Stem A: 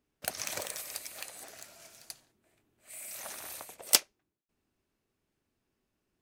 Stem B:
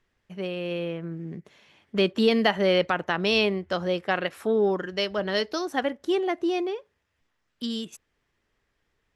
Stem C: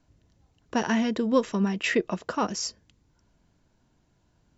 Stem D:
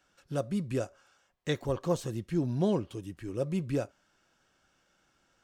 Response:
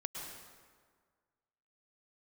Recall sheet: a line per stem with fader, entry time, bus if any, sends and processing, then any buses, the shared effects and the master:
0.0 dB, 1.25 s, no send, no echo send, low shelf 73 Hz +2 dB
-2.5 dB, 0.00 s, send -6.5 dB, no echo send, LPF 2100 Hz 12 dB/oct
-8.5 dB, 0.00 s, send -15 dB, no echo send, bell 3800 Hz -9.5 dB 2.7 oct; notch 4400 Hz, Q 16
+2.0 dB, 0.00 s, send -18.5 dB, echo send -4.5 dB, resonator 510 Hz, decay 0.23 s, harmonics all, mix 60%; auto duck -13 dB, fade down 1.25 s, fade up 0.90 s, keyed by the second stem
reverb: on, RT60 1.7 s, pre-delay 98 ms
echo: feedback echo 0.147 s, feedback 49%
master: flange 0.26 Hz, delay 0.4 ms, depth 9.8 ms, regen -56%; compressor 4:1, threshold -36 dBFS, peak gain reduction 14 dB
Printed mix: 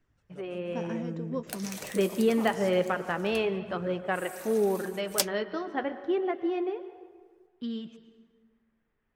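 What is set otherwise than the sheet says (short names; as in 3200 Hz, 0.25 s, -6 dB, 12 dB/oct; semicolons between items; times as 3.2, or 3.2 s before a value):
stem D +2.0 dB -> -6.0 dB; master: missing compressor 4:1, threshold -36 dBFS, peak gain reduction 14 dB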